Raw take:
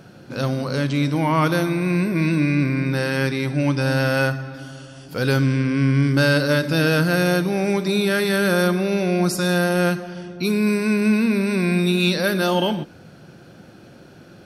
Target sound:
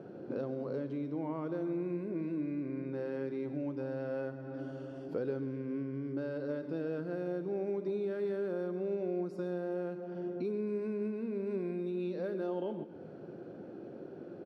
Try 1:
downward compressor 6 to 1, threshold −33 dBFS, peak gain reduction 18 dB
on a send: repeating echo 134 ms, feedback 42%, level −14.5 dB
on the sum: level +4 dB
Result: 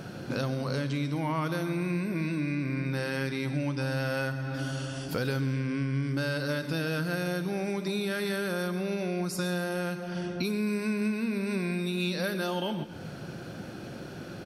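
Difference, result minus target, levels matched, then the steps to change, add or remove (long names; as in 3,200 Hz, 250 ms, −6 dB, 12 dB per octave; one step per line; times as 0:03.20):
500 Hz band −4.5 dB
add after downward compressor: resonant band-pass 400 Hz, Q 1.9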